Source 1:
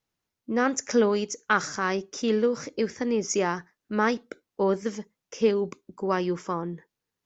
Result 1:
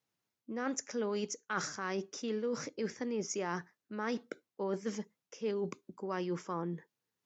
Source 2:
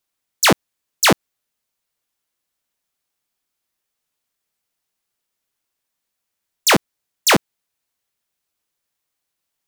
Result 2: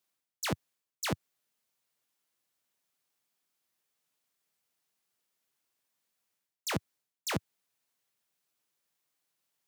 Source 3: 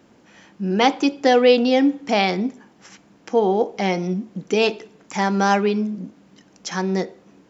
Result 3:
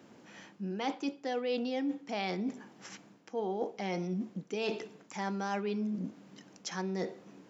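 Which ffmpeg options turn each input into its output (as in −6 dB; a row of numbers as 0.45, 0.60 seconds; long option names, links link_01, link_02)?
-af "highpass=frequency=100:width=0.5412,highpass=frequency=100:width=1.3066,areverse,acompressor=threshold=-30dB:ratio=5,areverse,volume=-3dB"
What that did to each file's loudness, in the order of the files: −11.0, −20.0, −16.0 LU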